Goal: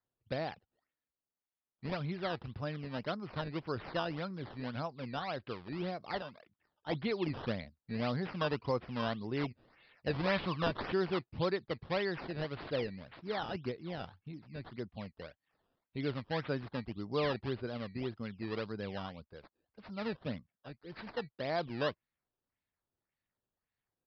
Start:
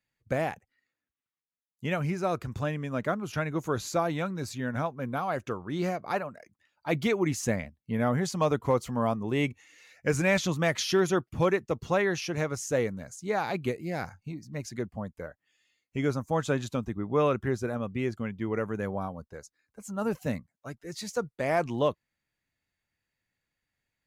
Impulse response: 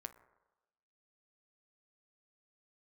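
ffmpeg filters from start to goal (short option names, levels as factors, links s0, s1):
-filter_complex "[0:a]asettb=1/sr,asplit=3[s0][s1][s2];[s0]atrim=end=10.134[s3];[s1]atrim=start=10.13:end=10.77,asetpts=PTS-STARTPTS,afade=t=in:d=0.004:c=qsin,afade=t=out:st=0.636:d=0.004:c=qsin,equalizer=f=1100:w=3.3:g=13.5[s4];[s2]atrim=start=10.766[s5];[s3][s4]acrossfade=d=0.004:c1=hsin:c2=qsin[s6];[s6][s5]acrossfade=d=0.004:c1=qsin:c2=hsin,acrusher=samples=14:mix=1:aa=0.000001:lfo=1:lforange=14:lforate=1.8,aresample=11025,aresample=44100,volume=0.398"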